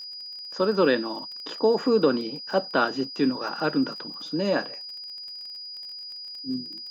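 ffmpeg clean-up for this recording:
ffmpeg -i in.wav -af "adeclick=threshold=4,bandreject=frequency=4900:width=30" out.wav

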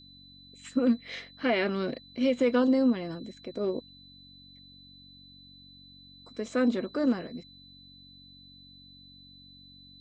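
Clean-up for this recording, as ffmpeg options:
ffmpeg -i in.wav -af "bandreject=frequency=46.6:width_type=h:width=4,bandreject=frequency=93.2:width_type=h:width=4,bandreject=frequency=139.8:width_type=h:width=4,bandreject=frequency=186.4:width_type=h:width=4,bandreject=frequency=233:width_type=h:width=4,bandreject=frequency=279.6:width_type=h:width=4,bandreject=frequency=4000:width=30" out.wav

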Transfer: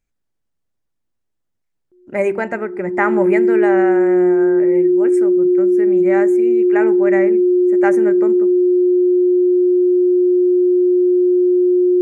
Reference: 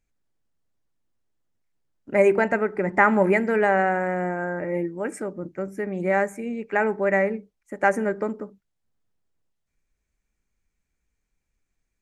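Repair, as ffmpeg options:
ffmpeg -i in.wav -af "bandreject=frequency=360:width=30" out.wav

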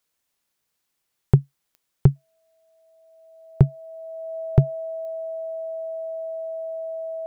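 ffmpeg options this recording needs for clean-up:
ffmpeg -i in.wav -af "adeclick=threshold=4,bandreject=frequency=650:width=30" out.wav

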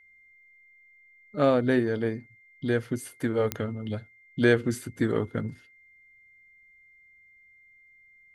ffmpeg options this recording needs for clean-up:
ffmpeg -i in.wav -af "adeclick=threshold=4,bandreject=frequency=2100:width=30" out.wav

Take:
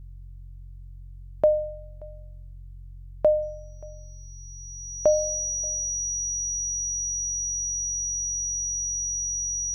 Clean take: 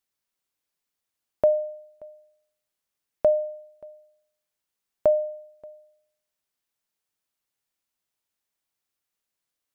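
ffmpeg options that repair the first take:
ffmpeg -i in.wav -filter_complex "[0:a]bandreject=frequency=45.1:width_type=h:width=4,bandreject=frequency=90.2:width_type=h:width=4,bandreject=frequency=135.3:width_type=h:width=4,bandreject=frequency=5800:width=30,asplit=3[link_01][link_02][link_03];[link_01]afade=type=out:start_time=6.51:duration=0.02[link_04];[link_02]highpass=frequency=140:width=0.5412,highpass=frequency=140:width=1.3066,afade=type=in:start_time=6.51:duration=0.02,afade=type=out:start_time=6.63:duration=0.02[link_05];[link_03]afade=type=in:start_time=6.63:duration=0.02[link_06];[link_04][link_05][link_06]amix=inputs=3:normalize=0" out.wav

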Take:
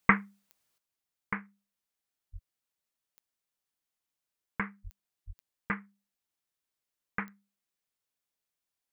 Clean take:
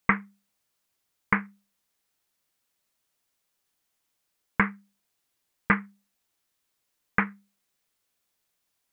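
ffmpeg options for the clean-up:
ffmpeg -i in.wav -filter_complex "[0:a]adeclick=threshold=4,asplit=3[link_01][link_02][link_03];[link_01]afade=type=out:start_time=2.32:duration=0.02[link_04];[link_02]highpass=frequency=140:width=0.5412,highpass=frequency=140:width=1.3066,afade=type=in:start_time=2.32:duration=0.02,afade=type=out:start_time=2.44:duration=0.02[link_05];[link_03]afade=type=in:start_time=2.44:duration=0.02[link_06];[link_04][link_05][link_06]amix=inputs=3:normalize=0,asplit=3[link_07][link_08][link_09];[link_07]afade=type=out:start_time=4.83:duration=0.02[link_10];[link_08]highpass=frequency=140:width=0.5412,highpass=frequency=140:width=1.3066,afade=type=in:start_time=4.83:duration=0.02,afade=type=out:start_time=4.95:duration=0.02[link_11];[link_09]afade=type=in:start_time=4.95:duration=0.02[link_12];[link_10][link_11][link_12]amix=inputs=3:normalize=0,asplit=3[link_13][link_14][link_15];[link_13]afade=type=out:start_time=5.26:duration=0.02[link_16];[link_14]highpass=frequency=140:width=0.5412,highpass=frequency=140:width=1.3066,afade=type=in:start_time=5.26:duration=0.02,afade=type=out:start_time=5.38:duration=0.02[link_17];[link_15]afade=type=in:start_time=5.38:duration=0.02[link_18];[link_16][link_17][link_18]amix=inputs=3:normalize=0,asetnsamples=nb_out_samples=441:pad=0,asendcmd='0.78 volume volume 11dB',volume=0dB" out.wav

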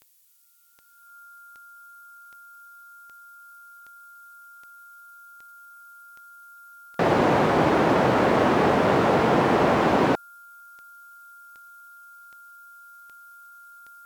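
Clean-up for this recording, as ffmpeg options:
ffmpeg -i in.wav -af "adeclick=threshold=4,bandreject=frequency=1400:width=30,agate=range=-21dB:threshold=-40dB" out.wav

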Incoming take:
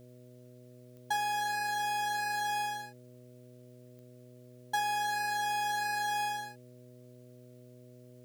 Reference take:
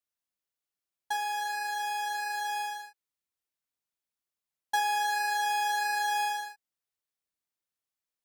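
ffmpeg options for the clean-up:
ffmpeg -i in.wav -af "adeclick=threshold=4,bandreject=frequency=123.8:width_type=h:width=4,bandreject=frequency=247.6:width_type=h:width=4,bandreject=frequency=371.4:width_type=h:width=4,bandreject=frequency=495.2:width_type=h:width=4,bandreject=frequency=619:width_type=h:width=4,agate=range=-21dB:threshold=-47dB,asetnsamples=nb_out_samples=441:pad=0,asendcmd='3.28 volume volume 3.5dB',volume=0dB" out.wav

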